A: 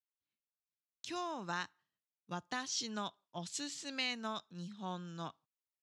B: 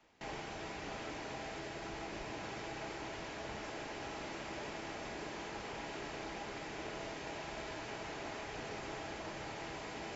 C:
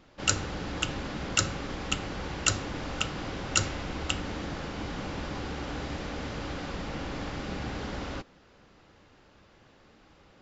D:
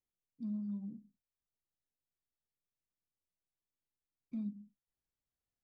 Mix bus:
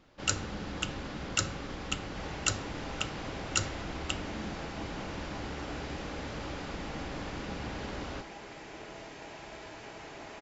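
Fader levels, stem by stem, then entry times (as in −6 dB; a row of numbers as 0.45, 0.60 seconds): muted, −2.0 dB, −4.0 dB, −7.5 dB; muted, 1.95 s, 0.00 s, 0.00 s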